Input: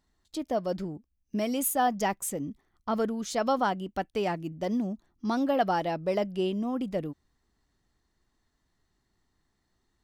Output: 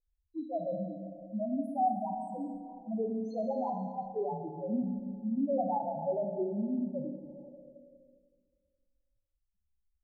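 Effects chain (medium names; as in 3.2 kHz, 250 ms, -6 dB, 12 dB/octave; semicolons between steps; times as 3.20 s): loudest bins only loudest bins 1; Schroeder reverb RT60 2 s, combs from 28 ms, DRR 3 dB; touch-sensitive low-pass 510–2900 Hz up, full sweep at -35.5 dBFS; trim +1 dB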